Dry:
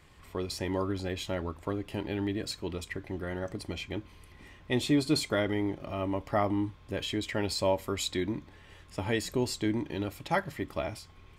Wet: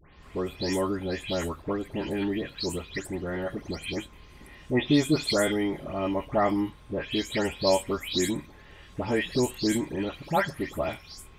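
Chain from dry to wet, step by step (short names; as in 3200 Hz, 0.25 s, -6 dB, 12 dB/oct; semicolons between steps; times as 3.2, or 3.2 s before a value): spectral delay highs late, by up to 0.226 s; gain +4.5 dB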